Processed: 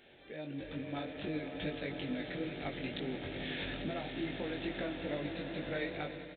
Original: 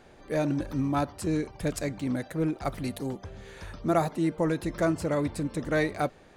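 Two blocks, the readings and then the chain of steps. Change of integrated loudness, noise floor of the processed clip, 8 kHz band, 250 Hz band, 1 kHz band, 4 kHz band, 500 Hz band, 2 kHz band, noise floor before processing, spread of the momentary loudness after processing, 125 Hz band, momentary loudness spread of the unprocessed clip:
-10.0 dB, -55 dBFS, under -35 dB, -10.5 dB, -13.5 dB, +1.5 dB, -10.0 dB, -5.0 dB, -54 dBFS, 4 LU, -12.5 dB, 8 LU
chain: compressor 6:1, threshold -40 dBFS, peak gain reduction 19 dB; tilt +3.5 dB/oct; swelling echo 94 ms, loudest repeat 8, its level -13 dB; AGC gain up to 10 dB; chorus 2.3 Hz, delay 19.5 ms, depth 3 ms; downsampling 8000 Hz; bell 1100 Hz -15 dB 0.97 oct; gain +2 dB

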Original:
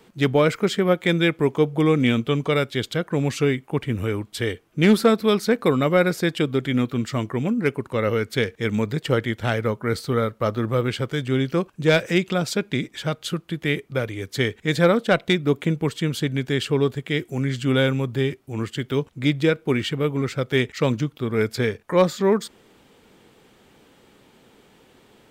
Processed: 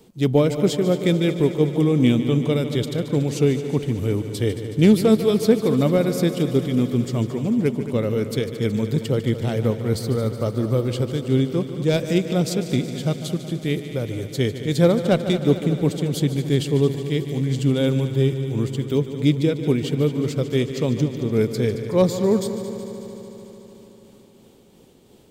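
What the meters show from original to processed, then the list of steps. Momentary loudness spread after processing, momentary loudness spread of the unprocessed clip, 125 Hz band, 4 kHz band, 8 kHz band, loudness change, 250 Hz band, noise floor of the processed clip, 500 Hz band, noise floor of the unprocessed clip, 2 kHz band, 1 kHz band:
7 LU, 8 LU, +3.5 dB, -2.5 dB, +2.0 dB, +1.0 dB, +2.5 dB, -49 dBFS, +0.5 dB, -56 dBFS, -8.5 dB, -5.5 dB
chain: bell 1600 Hz -14 dB 1.9 oct; tremolo 2.9 Hz, depth 38%; on a send: multi-head echo 74 ms, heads second and third, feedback 73%, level -13 dB; on the sum: gain +4.5 dB

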